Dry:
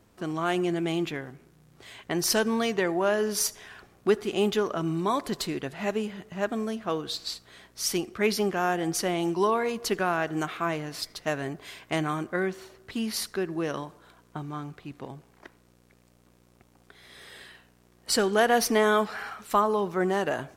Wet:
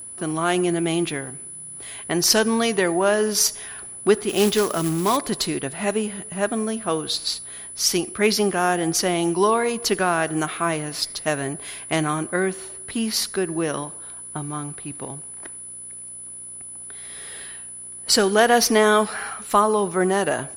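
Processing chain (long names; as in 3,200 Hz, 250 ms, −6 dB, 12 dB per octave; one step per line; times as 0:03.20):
steady tone 10,000 Hz −40 dBFS
0:04.29–0:05.17: log-companded quantiser 4 bits
dynamic equaliser 5,100 Hz, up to +4 dB, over −42 dBFS, Q 1.3
level +5.5 dB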